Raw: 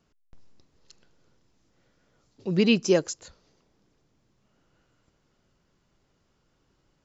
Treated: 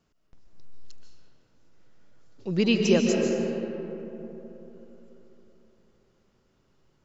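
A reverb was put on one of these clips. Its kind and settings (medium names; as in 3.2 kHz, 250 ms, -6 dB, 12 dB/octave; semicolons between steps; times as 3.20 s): algorithmic reverb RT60 3.6 s, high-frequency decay 0.4×, pre-delay 105 ms, DRR 0 dB; trim -2 dB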